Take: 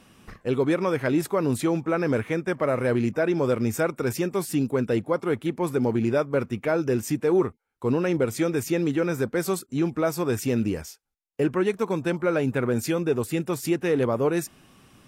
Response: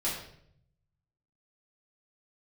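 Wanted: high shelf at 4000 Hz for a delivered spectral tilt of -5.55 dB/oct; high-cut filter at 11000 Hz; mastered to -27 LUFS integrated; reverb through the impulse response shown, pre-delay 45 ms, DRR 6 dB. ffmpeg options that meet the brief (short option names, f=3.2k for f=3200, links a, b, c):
-filter_complex "[0:a]lowpass=11k,highshelf=f=4k:g=7.5,asplit=2[a][b];[1:a]atrim=start_sample=2205,adelay=45[c];[b][c]afir=irnorm=-1:irlink=0,volume=-12.5dB[d];[a][d]amix=inputs=2:normalize=0,volume=-3.5dB"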